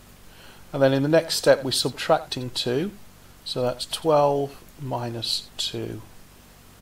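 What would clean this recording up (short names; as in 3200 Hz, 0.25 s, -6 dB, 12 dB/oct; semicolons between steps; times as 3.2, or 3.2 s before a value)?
de-hum 47.8 Hz, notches 5; inverse comb 88 ms -19.5 dB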